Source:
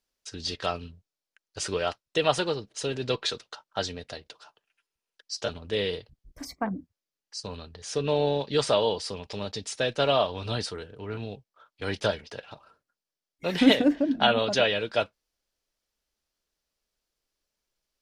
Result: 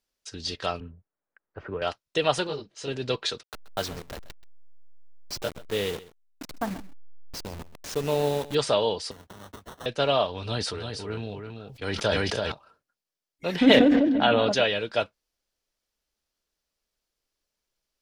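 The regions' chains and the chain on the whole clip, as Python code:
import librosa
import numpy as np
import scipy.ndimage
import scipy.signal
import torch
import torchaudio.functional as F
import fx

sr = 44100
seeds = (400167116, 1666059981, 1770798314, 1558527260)

y = fx.chain(x, sr, fx.lowpass(hz=1700.0, slope=24),
    fx.band_squash(depth_pct=40), at=(0.8, 1.82))
y = fx.chain(y, sr, fx.lowpass(hz=6700.0, slope=12),
    fx.detune_double(cents=20), at=(2.47, 2.88))
y = fx.chain(y, sr, fx.delta_hold(step_db=-32.5),
    fx.echo_single(ms=130, db=-17.5), at=(3.43, 8.55))
y = fx.chain(y, sr, fx.tone_stack(knobs='5-5-5'),
    fx.sample_hold(seeds[0], rate_hz=2400.0, jitter_pct=0),
    fx.band_squash(depth_pct=70), at=(9.11, 9.86))
y = fx.chain(y, sr, fx.echo_single(ms=329, db=-6.0),
    fx.sustainer(db_per_s=28.0), at=(10.4, 12.52))
y = fx.chain(y, sr, fx.high_shelf(hz=5000.0, db=-10.5),
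    fx.echo_filtered(ms=149, feedback_pct=65, hz=3100.0, wet_db=-16),
    fx.sustainer(db_per_s=21.0), at=(13.56, 14.52))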